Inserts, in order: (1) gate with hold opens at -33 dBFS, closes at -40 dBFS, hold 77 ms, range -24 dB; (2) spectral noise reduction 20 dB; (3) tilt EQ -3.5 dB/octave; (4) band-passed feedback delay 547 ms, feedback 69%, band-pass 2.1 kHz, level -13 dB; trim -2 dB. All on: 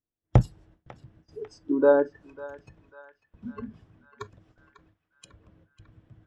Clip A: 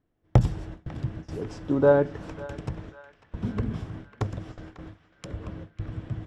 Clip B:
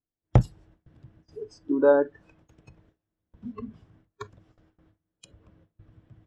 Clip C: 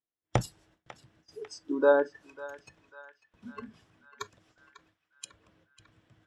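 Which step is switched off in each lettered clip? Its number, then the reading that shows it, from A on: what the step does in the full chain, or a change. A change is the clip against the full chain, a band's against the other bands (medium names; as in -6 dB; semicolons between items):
2, 125 Hz band +2.0 dB; 4, echo-to-direct -12.0 dB to none; 3, 250 Hz band -6.0 dB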